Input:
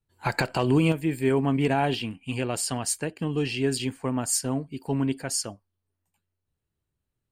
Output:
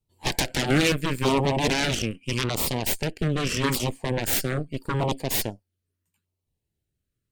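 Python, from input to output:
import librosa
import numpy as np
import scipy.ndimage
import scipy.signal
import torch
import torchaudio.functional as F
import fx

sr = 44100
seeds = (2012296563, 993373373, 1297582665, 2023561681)

y = fx.cheby_harmonics(x, sr, harmonics=(3, 7, 8), levels_db=(-11, -16, -10), full_scale_db=-11.5)
y = fx.filter_lfo_notch(y, sr, shape='saw_down', hz=0.8, low_hz=670.0, high_hz=1700.0, q=1.0)
y = y * librosa.db_to_amplitude(2.0)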